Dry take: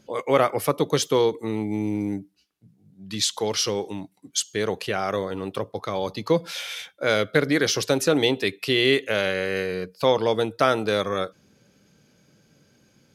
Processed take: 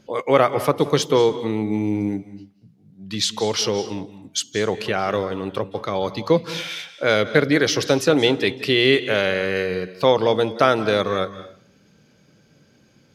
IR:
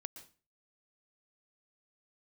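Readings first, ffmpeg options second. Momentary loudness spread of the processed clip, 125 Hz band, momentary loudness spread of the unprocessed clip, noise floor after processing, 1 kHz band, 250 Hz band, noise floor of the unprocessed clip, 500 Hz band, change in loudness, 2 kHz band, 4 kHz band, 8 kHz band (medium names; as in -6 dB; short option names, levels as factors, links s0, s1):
10 LU, +4.0 dB, 10 LU, -57 dBFS, +3.5 dB, +3.5 dB, -62 dBFS, +3.5 dB, +3.5 dB, +3.5 dB, +2.5 dB, -0.5 dB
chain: -filter_complex "[0:a]asplit=2[s0][s1];[1:a]atrim=start_sample=2205,asetrate=29547,aresample=44100,lowpass=6800[s2];[s1][s2]afir=irnorm=-1:irlink=0,volume=1.19[s3];[s0][s3]amix=inputs=2:normalize=0,volume=0.794"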